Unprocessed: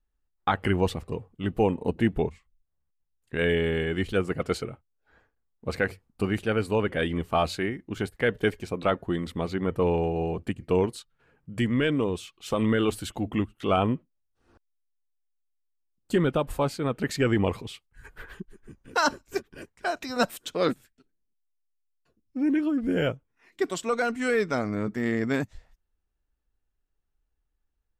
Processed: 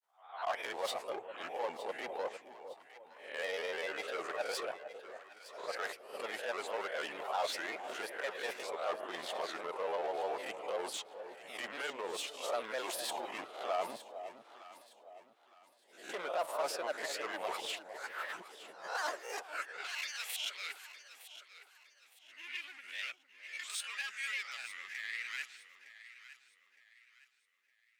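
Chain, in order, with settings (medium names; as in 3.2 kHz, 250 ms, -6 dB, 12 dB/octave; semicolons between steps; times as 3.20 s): reverse spectral sustain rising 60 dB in 0.36 s; bass shelf 480 Hz -11.5 dB; reverse; compression 8:1, threshold -36 dBFS, peak gain reduction 17 dB; reverse; hard clipper -37.5 dBFS, distortion -10 dB; granulator, spray 10 ms, pitch spread up and down by 3 st; high-pass sweep 630 Hz -> 2.3 kHz, 19.30–19.85 s; echo whose repeats swap between lows and highs 456 ms, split 870 Hz, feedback 58%, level -9.5 dB; trim +4 dB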